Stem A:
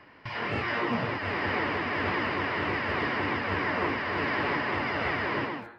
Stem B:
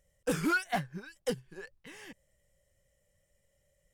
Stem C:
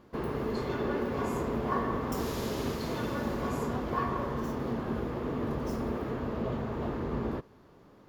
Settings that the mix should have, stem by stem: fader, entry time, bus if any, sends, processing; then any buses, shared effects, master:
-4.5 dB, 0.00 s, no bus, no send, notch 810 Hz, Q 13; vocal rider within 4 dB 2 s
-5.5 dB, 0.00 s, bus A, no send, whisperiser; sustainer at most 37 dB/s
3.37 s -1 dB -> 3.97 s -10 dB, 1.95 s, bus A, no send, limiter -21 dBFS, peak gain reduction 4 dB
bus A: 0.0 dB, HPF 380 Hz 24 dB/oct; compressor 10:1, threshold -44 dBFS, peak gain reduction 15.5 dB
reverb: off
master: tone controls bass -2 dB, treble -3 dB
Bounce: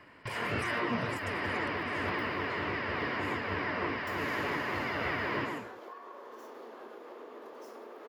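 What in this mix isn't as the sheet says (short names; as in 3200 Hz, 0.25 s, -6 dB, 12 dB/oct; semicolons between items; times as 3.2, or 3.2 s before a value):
stem C -1.0 dB -> +7.5 dB; master: missing tone controls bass -2 dB, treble -3 dB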